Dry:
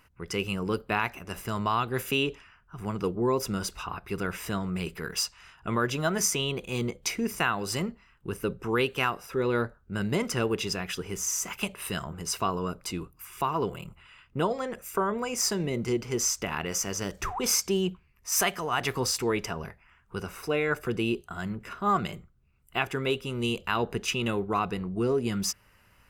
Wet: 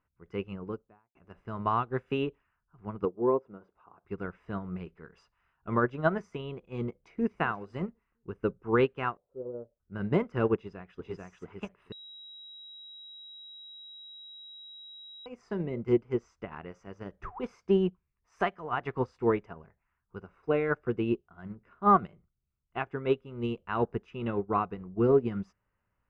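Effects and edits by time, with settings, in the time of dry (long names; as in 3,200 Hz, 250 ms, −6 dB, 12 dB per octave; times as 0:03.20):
0:00.47–0:01.15: fade out and dull
0:03.05–0:04.05: resonant band-pass 540 Hz, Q 0.75
0:07.00–0:07.40: delay throw 240 ms, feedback 45%, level −15.5 dB
0:09.17–0:09.80: transistor ladder low-pass 640 Hz, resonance 65%
0:10.55–0:11.24: delay throw 440 ms, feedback 15%, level −0.5 dB
0:11.92–0:15.26: beep over 3,850 Hz −15.5 dBFS
whole clip: low-pass filter 1,500 Hz 12 dB per octave; expander for the loud parts 2.5 to 1, over −38 dBFS; level +5.5 dB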